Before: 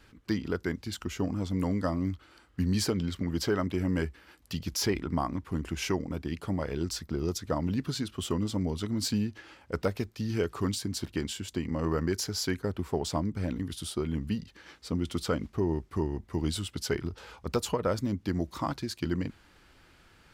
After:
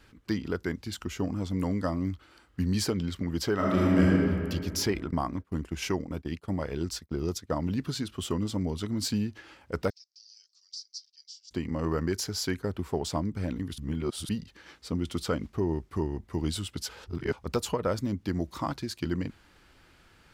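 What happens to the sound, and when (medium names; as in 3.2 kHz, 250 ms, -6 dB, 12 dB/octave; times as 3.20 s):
3.54–4.08 s: reverb throw, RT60 2.3 s, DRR -6 dB
5.11–7.68 s: expander -35 dBFS
9.90–11.51 s: Butterworth band-pass 5.2 kHz, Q 3.9
13.78–14.29 s: reverse
16.89–17.33 s: reverse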